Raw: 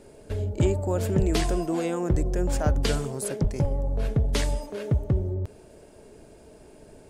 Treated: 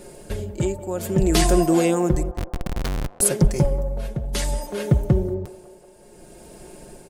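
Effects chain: treble shelf 7.5 kHz +11 dB; comb 5.6 ms, depth 55%; tremolo 0.6 Hz, depth 71%; 2.31–3.21 s: Schmitt trigger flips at -25 dBFS; band-passed feedback delay 185 ms, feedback 74%, band-pass 740 Hz, level -15 dB; trim +6.5 dB

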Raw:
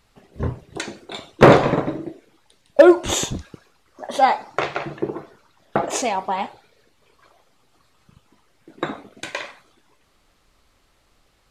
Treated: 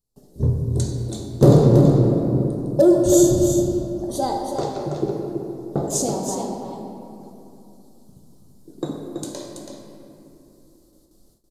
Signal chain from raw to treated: FFT filter 400 Hz 0 dB, 2.4 kHz -28 dB, 4.3 kHz -3 dB, 13 kHz +10 dB; simulated room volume 130 m³, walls hard, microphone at 0.35 m; dynamic bell 120 Hz, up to +7 dB, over -35 dBFS, Q 1.3; in parallel at -1 dB: peak limiter -12 dBFS, peak gain reduction 13.5 dB; on the sum: gate with hold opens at -42 dBFS; on a send: delay 329 ms -7 dB; on the sum: trim -5 dB

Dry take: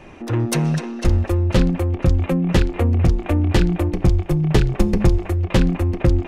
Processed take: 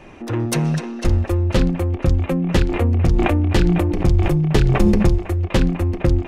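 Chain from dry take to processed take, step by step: hum notches 60/120/180 Hz; 2.65–5.06 s: decay stretcher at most 23 dB/s

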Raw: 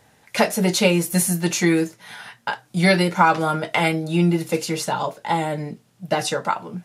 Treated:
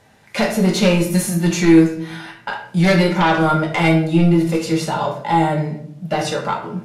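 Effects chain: sine folder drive 8 dB, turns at -2.5 dBFS; treble shelf 7.7 kHz -8 dB; harmonic-percussive split harmonic +5 dB; on a send: reverberation RT60 0.65 s, pre-delay 5 ms, DRR 2 dB; on the sum: trim -12.5 dB

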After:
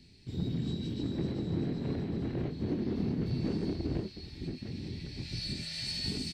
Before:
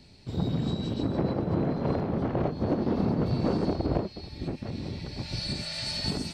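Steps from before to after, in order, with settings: high-order bell 840 Hz -11.5 dB; in parallel at -10.5 dB: saturation -31 dBFS, distortion -8 dB; on the sum: doubling 24 ms -11 dB; feedback echo behind a high-pass 384 ms, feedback 67%, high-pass 2.5 kHz, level -5.5 dB; trim -6.5 dB

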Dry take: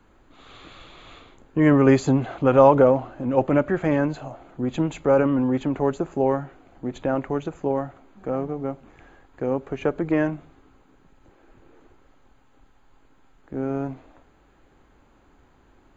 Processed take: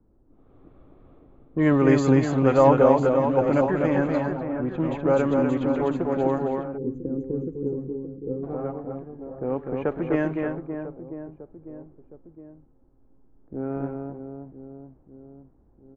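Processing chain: reverse bouncing-ball echo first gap 250 ms, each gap 1.3×, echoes 5; time-frequency box 6.78–8.44 s, 520–5600 Hz -28 dB; level-controlled noise filter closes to 410 Hz, open at -13.5 dBFS; trim -3 dB

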